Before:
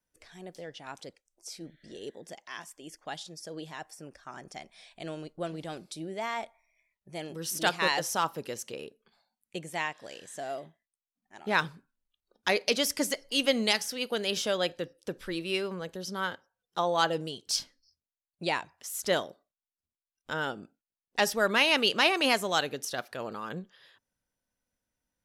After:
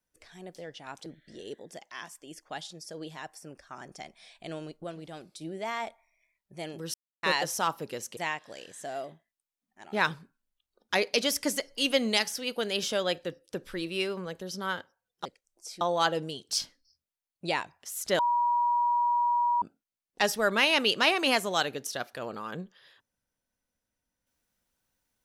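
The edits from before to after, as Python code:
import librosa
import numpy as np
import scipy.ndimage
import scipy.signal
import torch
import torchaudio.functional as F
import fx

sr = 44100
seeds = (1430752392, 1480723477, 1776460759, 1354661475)

y = fx.edit(x, sr, fx.move(start_s=1.06, length_s=0.56, to_s=16.79),
    fx.clip_gain(start_s=5.4, length_s=0.57, db=-4.5),
    fx.silence(start_s=7.5, length_s=0.29),
    fx.cut(start_s=8.73, length_s=0.98),
    fx.bleep(start_s=19.17, length_s=1.43, hz=960.0, db=-22.5), tone=tone)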